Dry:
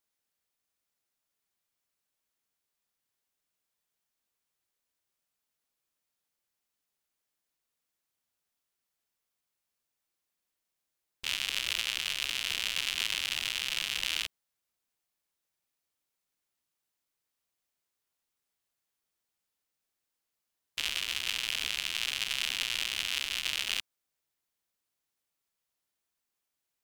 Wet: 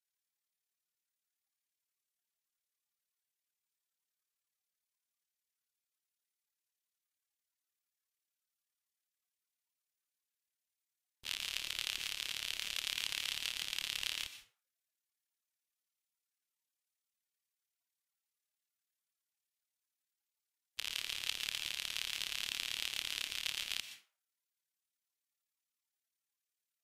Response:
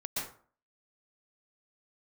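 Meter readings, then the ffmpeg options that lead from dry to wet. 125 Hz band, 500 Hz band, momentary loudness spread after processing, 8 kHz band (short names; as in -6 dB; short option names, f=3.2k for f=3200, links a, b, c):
-7.0 dB, -7.5 dB, 6 LU, -5.5 dB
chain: -filter_complex "[0:a]tremolo=f=36:d=1,asplit=2[a][b];[1:a]atrim=start_sample=2205,highshelf=f=4.2k:g=9[c];[b][c]afir=irnorm=-1:irlink=0,volume=-14dB[d];[a][d]amix=inputs=2:normalize=0,volume=-4.5dB" -ar 48000 -c:a libvorbis -b:a 48k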